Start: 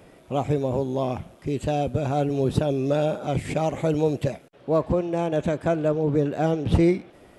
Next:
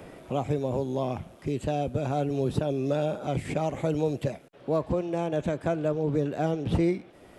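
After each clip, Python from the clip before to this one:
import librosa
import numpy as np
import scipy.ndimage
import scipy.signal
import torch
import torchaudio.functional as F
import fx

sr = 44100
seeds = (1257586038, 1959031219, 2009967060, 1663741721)

y = fx.band_squash(x, sr, depth_pct=40)
y = F.gain(torch.from_numpy(y), -4.5).numpy()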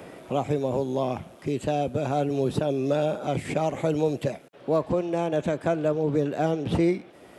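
y = fx.highpass(x, sr, hz=160.0, slope=6)
y = F.gain(torch.from_numpy(y), 3.5).numpy()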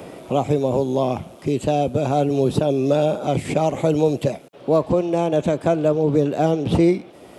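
y = fx.peak_eq(x, sr, hz=1700.0, db=-6.5, octaves=0.76)
y = F.gain(torch.from_numpy(y), 6.5).numpy()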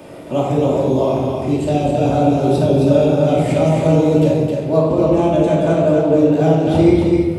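y = x + 10.0 ** (-4.0 / 20.0) * np.pad(x, (int(265 * sr / 1000.0), 0))[:len(x)]
y = fx.room_shoebox(y, sr, seeds[0], volume_m3=800.0, walls='mixed', distance_m=2.6)
y = F.gain(torch.from_numpy(y), -3.5).numpy()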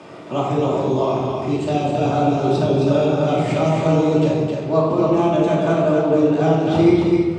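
y = fx.cabinet(x, sr, low_hz=110.0, low_slope=24, high_hz=7100.0, hz=(150.0, 260.0, 540.0, 1200.0), db=(-4, -6, -7, 6))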